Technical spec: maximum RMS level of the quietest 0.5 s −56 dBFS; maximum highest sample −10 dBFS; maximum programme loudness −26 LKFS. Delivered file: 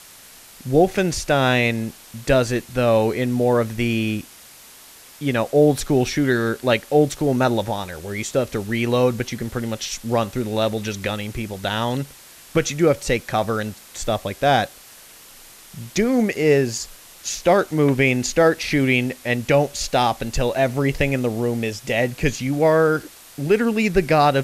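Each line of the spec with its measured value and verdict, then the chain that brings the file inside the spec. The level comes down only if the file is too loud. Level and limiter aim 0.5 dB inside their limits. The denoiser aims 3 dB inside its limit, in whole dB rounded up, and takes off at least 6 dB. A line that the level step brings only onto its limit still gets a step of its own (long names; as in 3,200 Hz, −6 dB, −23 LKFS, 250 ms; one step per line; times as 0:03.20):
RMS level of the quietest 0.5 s −45 dBFS: out of spec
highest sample −5.5 dBFS: out of spec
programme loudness −20.5 LKFS: out of spec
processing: broadband denoise 8 dB, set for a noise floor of −45 dBFS
level −6 dB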